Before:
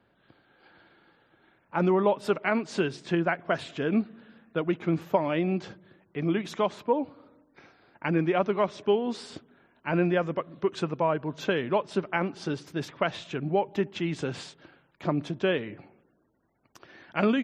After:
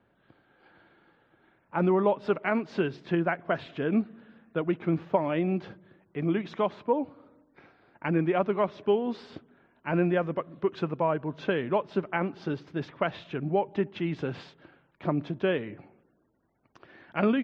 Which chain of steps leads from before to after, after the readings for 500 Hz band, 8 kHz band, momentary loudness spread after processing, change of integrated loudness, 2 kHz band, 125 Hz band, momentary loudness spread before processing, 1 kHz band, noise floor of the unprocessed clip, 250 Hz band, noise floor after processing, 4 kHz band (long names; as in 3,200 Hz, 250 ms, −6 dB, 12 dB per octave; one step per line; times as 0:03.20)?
−0.5 dB, can't be measured, 10 LU, −0.5 dB, −2.0 dB, 0.0 dB, 10 LU, −1.0 dB, −68 dBFS, −0.5 dB, −68 dBFS, −5.5 dB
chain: high-frequency loss of the air 240 metres